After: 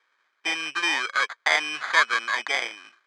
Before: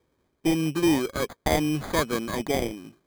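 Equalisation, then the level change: resonant high-pass 1.5 kHz, resonance Q 2.1; low-pass 8.5 kHz 12 dB/octave; distance through air 92 m; +8.0 dB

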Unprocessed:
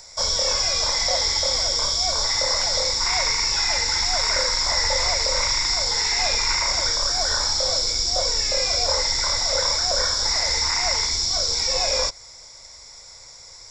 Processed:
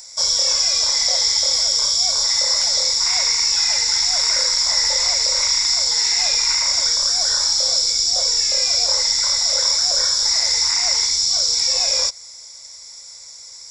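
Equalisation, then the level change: pre-emphasis filter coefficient 0.8; bass shelf 85 Hz -8.5 dB; +8.0 dB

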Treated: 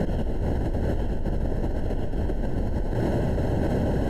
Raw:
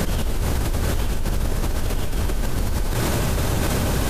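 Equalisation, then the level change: boxcar filter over 37 samples; bass shelf 210 Hz -10.5 dB; peaking EQ 410 Hz -2 dB 0.45 oct; +5.5 dB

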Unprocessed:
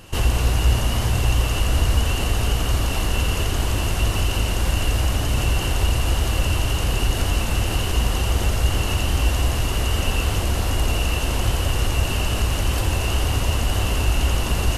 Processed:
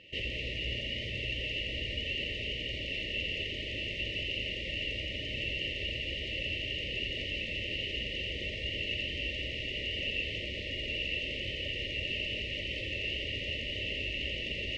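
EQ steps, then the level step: brick-wall FIR band-stop 640–1800 Hz; low-pass 2.9 kHz 24 dB/octave; tilt EQ +4 dB/octave; -7.5 dB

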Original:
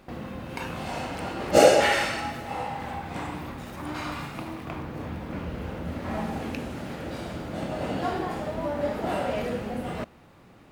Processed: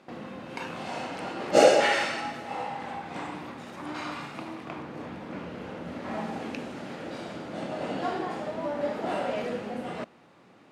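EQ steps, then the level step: band-pass 190–7900 Hz; -1.5 dB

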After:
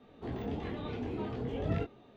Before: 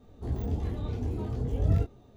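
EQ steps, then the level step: three-band isolator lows -16 dB, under 150 Hz, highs -17 dB, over 3.4 kHz; peaking EQ 3 kHz +9.5 dB 2.2 oct; 0.0 dB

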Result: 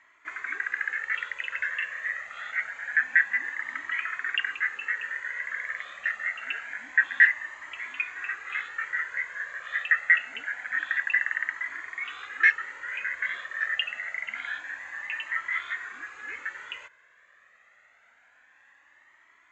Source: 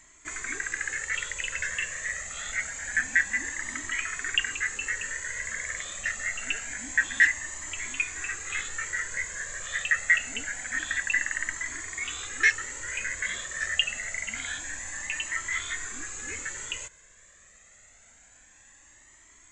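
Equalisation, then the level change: band-pass filter 1.5 kHz, Q 1.2; distance through air 190 m; +5.0 dB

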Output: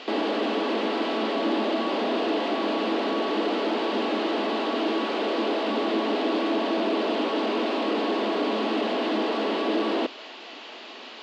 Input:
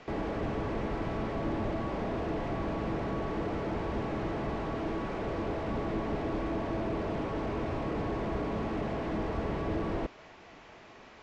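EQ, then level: brick-wall FIR high-pass 210 Hz; high-order bell 3.6 kHz +10.5 dB 1 oct; +9.0 dB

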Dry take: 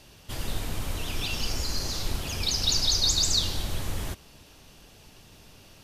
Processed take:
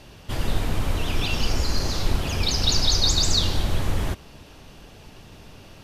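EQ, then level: treble shelf 3.9 kHz -10.5 dB; +8.0 dB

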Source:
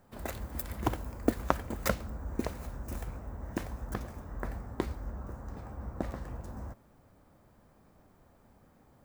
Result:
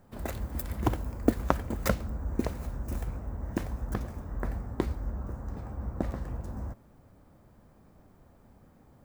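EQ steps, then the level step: bass shelf 410 Hz +5.5 dB; 0.0 dB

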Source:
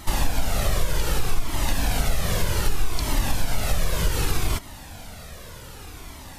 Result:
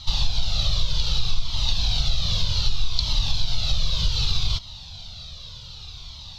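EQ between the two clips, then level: FFT filter 140 Hz 0 dB, 300 Hz -20 dB, 560 Hz -12 dB, 1.2 kHz -7 dB, 1.8 kHz -17 dB, 3.9 kHz +14 dB, 6.1 kHz -1 dB, 9.6 kHz -28 dB, 15 kHz -23 dB; 0.0 dB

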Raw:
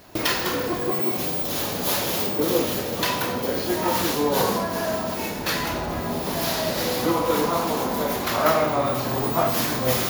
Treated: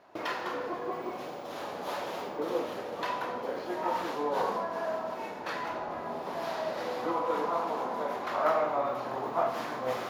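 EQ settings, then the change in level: band-pass filter 860 Hz, Q 0.91; -5.0 dB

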